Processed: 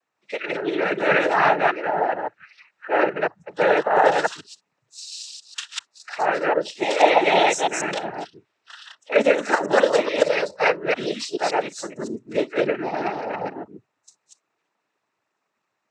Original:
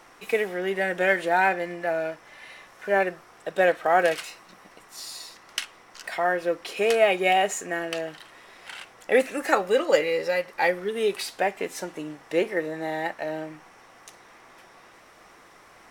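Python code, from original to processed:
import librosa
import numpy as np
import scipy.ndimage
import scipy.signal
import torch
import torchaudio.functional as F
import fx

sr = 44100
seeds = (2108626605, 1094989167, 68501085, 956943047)

y = fx.reverse_delay(x, sr, ms=142, wet_db=0)
y = fx.noise_reduce_blind(y, sr, reduce_db=29)
y = fx.noise_vocoder(y, sr, seeds[0], bands=12)
y = F.gain(torch.from_numpy(y), 2.0).numpy()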